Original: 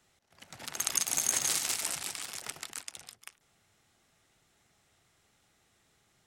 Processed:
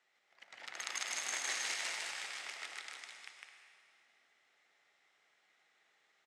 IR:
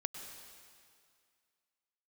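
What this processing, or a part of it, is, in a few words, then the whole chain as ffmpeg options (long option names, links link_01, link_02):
station announcement: -filter_complex "[0:a]highpass=500,lowpass=4800,equalizer=frequency=2000:width_type=o:width=0.5:gain=7.5,aecho=1:1:154.5|212.8:0.891|0.282[link_01];[1:a]atrim=start_sample=2205[link_02];[link_01][link_02]afir=irnorm=-1:irlink=0,volume=-5.5dB"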